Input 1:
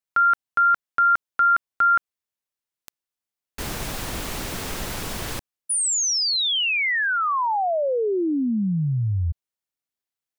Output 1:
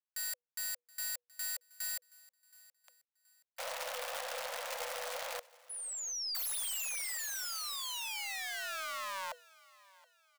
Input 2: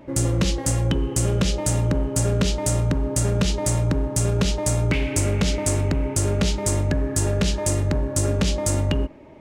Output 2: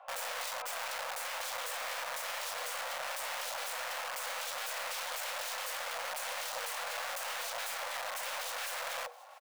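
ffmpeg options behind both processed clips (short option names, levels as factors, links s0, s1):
-af "lowpass=f=2300:p=1,aeval=exprs='(mod(18.8*val(0)+1,2)-1)/18.8':c=same,aecho=1:1:724|1448|2172:0.075|0.0285|0.0108,afreqshift=480,aeval=exprs='0.188*(cos(1*acos(clip(val(0)/0.188,-1,1)))-cos(1*PI/2))+0.00668*(cos(4*acos(clip(val(0)/0.188,-1,1)))-cos(4*PI/2))':c=same,volume=0.376"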